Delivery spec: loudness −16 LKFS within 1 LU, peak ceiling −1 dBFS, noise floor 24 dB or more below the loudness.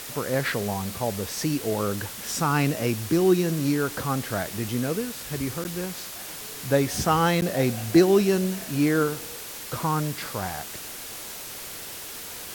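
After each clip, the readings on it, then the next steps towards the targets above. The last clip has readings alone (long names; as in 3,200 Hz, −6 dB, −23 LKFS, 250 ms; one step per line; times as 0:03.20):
number of dropouts 2; longest dropout 9.9 ms; background noise floor −38 dBFS; target noise floor −50 dBFS; integrated loudness −26.0 LKFS; sample peak −6.0 dBFS; target loudness −16.0 LKFS
→ repair the gap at 0:05.64/0:07.41, 9.9 ms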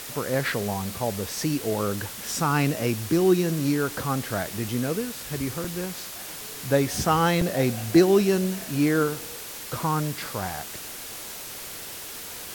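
number of dropouts 0; background noise floor −38 dBFS; target noise floor −50 dBFS
→ noise reduction from a noise print 12 dB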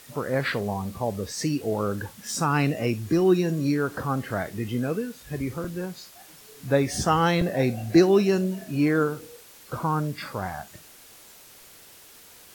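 background noise floor −50 dBFS; integrated loudness −25.5 LKFS; sample peak −6.0 dBFS; target loudness −16.0 LKFS
→ level +9.5 dB
brickwall limiter −1 dBFS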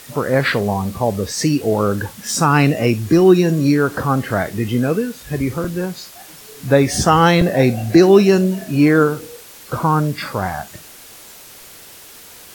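integrated loudness −16.0 LKFS; sample peak −1.0 dBFS; background noise floor −40 dBFS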